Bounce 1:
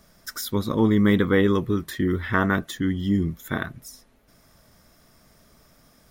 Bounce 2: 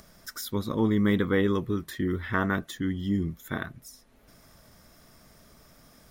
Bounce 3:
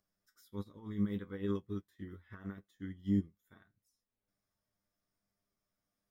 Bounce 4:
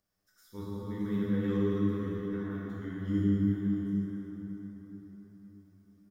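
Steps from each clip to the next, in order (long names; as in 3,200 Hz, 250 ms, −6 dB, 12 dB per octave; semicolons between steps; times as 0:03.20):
upward compression, threshold −42 dBFS; level −5 dB
brickwall limiter −21.5 dBFS, peak gain reduction 9.5 dB; tuned comb filter 100 Hz, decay 0.15 s, harmonics all, mix 90%; expander for the loud parts 2.5 to 1, over −45 dBFS
stylus tracing distortion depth 0.022 ms; single-tap delay 621 ms −12 dB; dense smooth reverb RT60 4.8 s, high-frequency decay 0.6×, DRR −7 dB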